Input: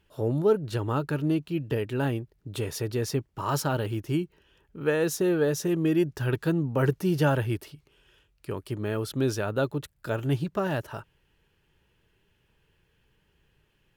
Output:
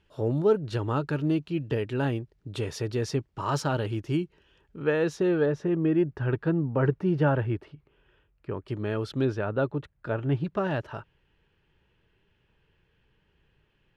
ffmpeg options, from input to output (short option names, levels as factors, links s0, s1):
-af "asetnsamples=n=441:p=0,asendcmd='4.82 lowpass f 3600;5.46 lowpass f 1900;8.68 lowpass f 4400;9.25 lowpass f 2200;10.44 lowpass f 3800',lowpass=6200"